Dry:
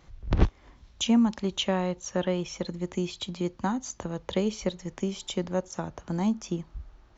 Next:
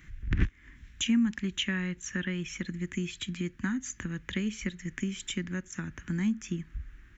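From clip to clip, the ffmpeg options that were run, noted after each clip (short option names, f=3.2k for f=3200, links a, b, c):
-af "acompressor=threshold=-37dB:ratio=1.5,firequalizer=gain_entry='entry(280,0);entry(480,-17);entry(710,-23);entry(1700,10);entry(4400,-10);entry(8000,5)':delay=0.05:min_phase=1,volume=3dB"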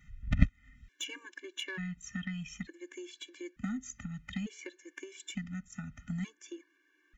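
-af "aeval=exprs='0.282*(cos(1*acos(clip(val(0)/0.282,-1,1)))-cos(1*PI/2))+0.0708*(cos(3*acos(clip(val(0)/0.282,-1,1)))-cos(3*PI/2))+0.002*(cos(5*acos(clip(val(0)/0.282,-1,1)))-cos(5*PI/2))':c=same,afftfilt=real='re*gt(sin(2*PI*0.56*pts/sr)*(1-2*mod(floor(b*sr/1024/300),2)),0)':imag='im*gt(sin(2*PI*0.56*pts/sr)*(1-2*mod(floor(b*sr/1024/300),2)),0)':win_size=1024:overlap=0.75,volume=6dB"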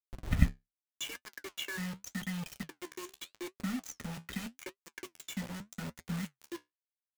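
-af "acrusher=bits=6:mix=0:aa=0.000001,flanger=delay=6:depth=9.1:regen=-57:speed=0.83:shape=sinusoidal,volume=4dB"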